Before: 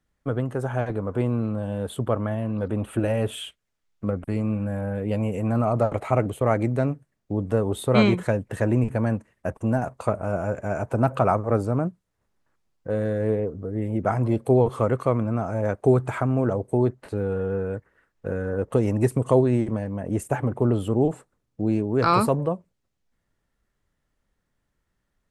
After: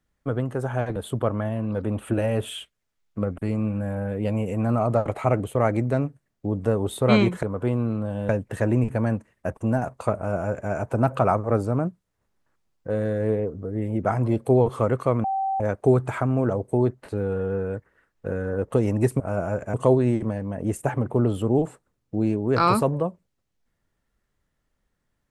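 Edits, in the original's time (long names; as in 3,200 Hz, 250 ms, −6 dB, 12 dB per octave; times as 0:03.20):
0:00.96–0:01.82: move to 0:08.29
0:10.16–0:10.70: duplicate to 0:19.20
0:15.24–0:15.60: beep over 775 Hz −22 dBFS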